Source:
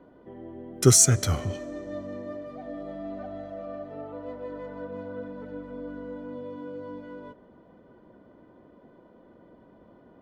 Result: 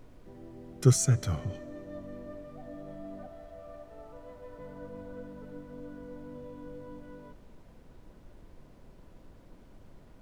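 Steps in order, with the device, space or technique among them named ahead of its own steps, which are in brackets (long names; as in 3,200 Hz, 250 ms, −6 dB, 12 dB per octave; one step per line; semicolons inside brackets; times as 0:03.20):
0:03.27–0:04.59: Bessel high-pass filter 500 Hz, order 2
car interior (parametric band 140 Hz +8 dB 0.64 octaves; high-shelf EQ 4,100 Hz −7 dB; brown noise bed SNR 16 dB)
level −7.5 dB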